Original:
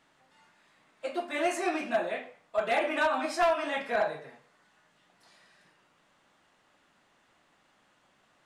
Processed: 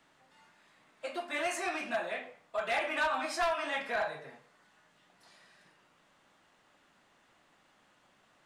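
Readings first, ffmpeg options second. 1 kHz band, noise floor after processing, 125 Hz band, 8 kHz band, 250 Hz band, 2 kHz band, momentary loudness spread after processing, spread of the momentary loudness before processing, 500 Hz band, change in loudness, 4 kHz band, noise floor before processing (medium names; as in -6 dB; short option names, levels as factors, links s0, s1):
-4.0 dB, -68 dBFS, -4.0 dB, -0.5 dB, -8.5 dB, -1.5 dB, 10 LU, 10 LU, -6.0 dB, -4.0 dB, -0.5 dB, -68 dBFS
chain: -filter_complex "[0:a]acrossover=split=130|730|5000[s0][s1][s2][s3];[s1]acompressor=threshold=0.00891:ratio=6[s4];[s0][s4][s2][s3]amix=inputs=4:normalize=0,asoftclip=type=tanh:threshold=0.0794"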